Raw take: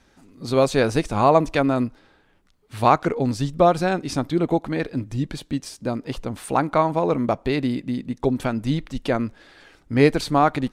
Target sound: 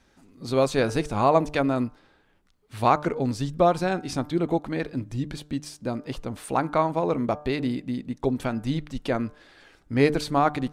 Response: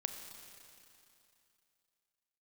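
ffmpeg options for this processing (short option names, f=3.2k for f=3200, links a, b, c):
-af "bandreject=f=149:t=h:w=4,bandreject=f=298:t=h:w=4,bandreject=f=447:t=h:w=4,bandreject=f=596:t=h:w=4,bandreject=f=745:t=h:w=4,bandreject=f=894:t=h:w=4,bandreject=f=1.043k:t=h:w=4,bandreject=f=1.192k:t=h:w=4,bandreject=f=1.341k:t=h:w=4,bandreject=f=1.49k:t=h:w=4,bandreject=f=1.639k:t=h:w=4,volume=-3.5dB"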